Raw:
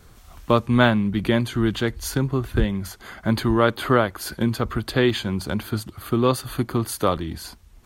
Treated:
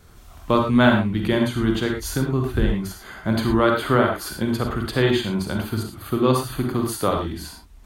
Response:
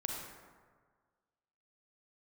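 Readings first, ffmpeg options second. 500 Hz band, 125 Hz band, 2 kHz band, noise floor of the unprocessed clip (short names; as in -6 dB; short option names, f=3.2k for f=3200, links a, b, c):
+1.0 dB, 0.0 dB, +1.0 dB, -50 dBFS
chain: -filter_complex "[1:a]atrim=start_sample=2205,afade=t=out:st=0.17:d=0.01,atrim=end_sample=7938[a];[0:a][a]afir=irnorm=-1:irlink=0"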